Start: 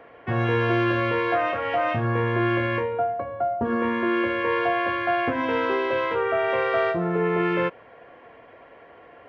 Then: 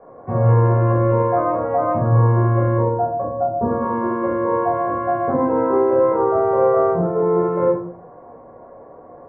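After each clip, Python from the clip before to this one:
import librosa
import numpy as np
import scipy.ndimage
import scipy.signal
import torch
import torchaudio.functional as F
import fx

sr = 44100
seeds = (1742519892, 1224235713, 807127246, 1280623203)

y = scipy.signal.sosfilt(scipy.signal.butter(4, 1100.0, 'lowpass', fs=sr, output='sos'), x)
y = fx.room_shoebox(y, sr, seeds[0], volume_m3=460.0, walls='furnished', distance_m=5.4)
y = F.gain(torch.from_numpy(y), -2.0).numpy()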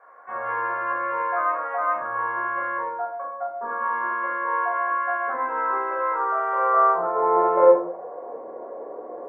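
y = fx.dynamic_eq(x, sr, hz=300.0, q=0.89, threshold_db=-25.0, ratio=4.0, max_db=3)
y = fx.filter_sweep_highpass(y, sr, from_hz=1500.0, to_hz=390.0, start_s=6.51, end_s=8.47, q=2.1)
y = F.gain(torch.from_numpy(y), 1.5).numpy()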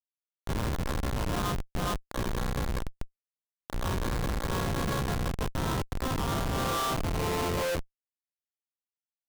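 y = fx.high_shelf(x, sr, hz=2300.0, db=10.5)
y = fx.schmitt(y, sr, flips_db=-18.0)
y = F.gain(torch.from_numpy(y), -6.5).numpy()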